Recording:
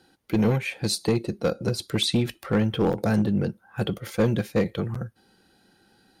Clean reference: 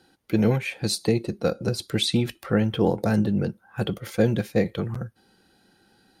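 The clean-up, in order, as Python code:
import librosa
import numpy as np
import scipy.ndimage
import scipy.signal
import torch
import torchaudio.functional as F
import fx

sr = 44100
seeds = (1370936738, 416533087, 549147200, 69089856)

y = fx.fix_declip(x, sr, threshold_db=-15.0)
y = fx.fix_interpolate(y, sr, at_s=(2.34, 2.93, 4.17), length_ms=1.0)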